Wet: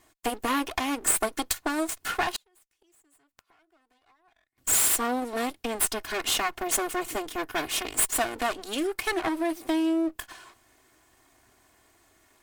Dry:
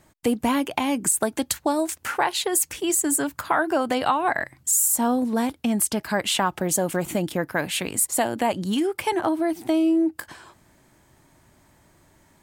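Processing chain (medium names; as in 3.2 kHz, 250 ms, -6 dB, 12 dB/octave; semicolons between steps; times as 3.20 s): comb filter that takes the minimum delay 2.8 ms; bass shelf 410 Hz -8.5 dB; 2.36–4.58 s: inverted gate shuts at -27 dBFS, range -39 dB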